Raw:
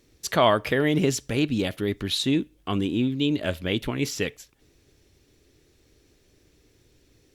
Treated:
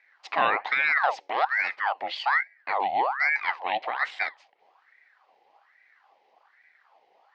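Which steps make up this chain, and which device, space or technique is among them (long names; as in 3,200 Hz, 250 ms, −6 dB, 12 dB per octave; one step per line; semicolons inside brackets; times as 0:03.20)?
voice changer toy (ring modulator whose carrier an LFO sweeps 1,200 Hz, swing 65%, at 1.2 Hz; loudspeaker in its box 560–3,800 Hz, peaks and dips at 790 Hz +9 dB, 1,400 Hz −4 dB, 2,000 Hz +6 dB, 3,600 Hz −5 dB)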